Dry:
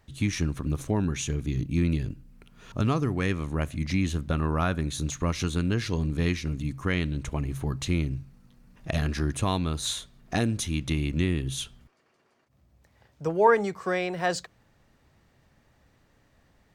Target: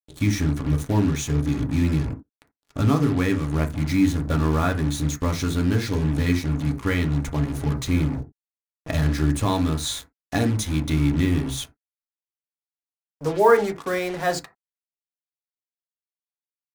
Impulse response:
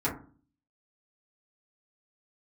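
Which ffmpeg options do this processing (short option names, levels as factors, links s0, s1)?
-filter_complex "[0:a]bandreject=f=2800:w=8.1,acrusher=bits=5:mix=0:aa=0.5,asplit=2[s0][s1];[1:a]atrim=start_sample=2205,afade=t=out:st=0.14:d=0.01,atrim=end_sample=6615[s2];[s1][s2]afir=irnorm=-1:irlink=0,volume=0.299[s3];[s0][s3]amix=inputs=2:normalize=0"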